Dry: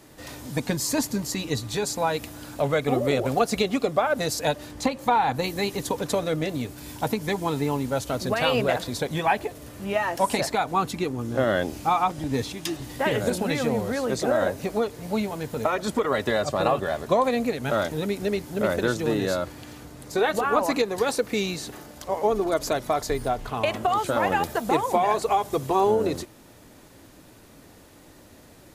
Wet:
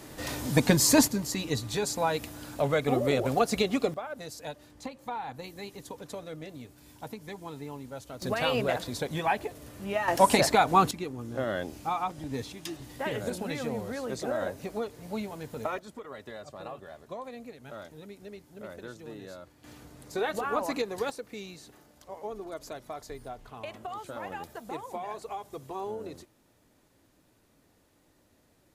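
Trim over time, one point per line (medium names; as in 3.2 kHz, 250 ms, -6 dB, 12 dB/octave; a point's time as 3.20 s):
+4.5 dB
from 1.08 s -3 dB
from 3.94 s -15 dB
from 8.22 s -5 dB
from 10.08 s +2.5 dB
from 10.91 s -8.5 dB
from 15.79 s -19 dB
from 19.64 s -7.5 dB
from 21.10 s -15.5 dB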